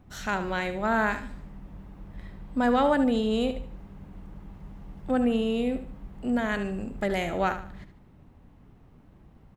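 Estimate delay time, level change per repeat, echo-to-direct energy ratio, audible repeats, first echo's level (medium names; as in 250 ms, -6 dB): 74 ms, -9.5 dB, -10.5 dB, 3, -11.0 dB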